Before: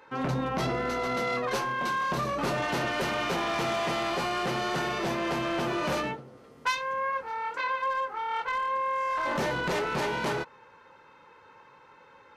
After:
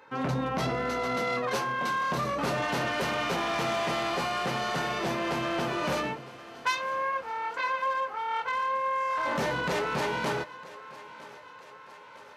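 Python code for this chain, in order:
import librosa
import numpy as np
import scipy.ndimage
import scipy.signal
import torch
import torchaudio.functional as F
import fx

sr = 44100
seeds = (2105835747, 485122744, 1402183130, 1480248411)

p1 = scipy.signal.sosfilt(scipy.signal.butter(2, 55.0, 'highpass', fs=sr, output='sos'), x)
p2 = fx.notch(p1, sr, hz=360.0, q=12.0)
y = p2 + fx.echo_thinned(p2, sr, ms=957, feedback_pct=65, hz=320.0, wet_db=-17.5, dry=0)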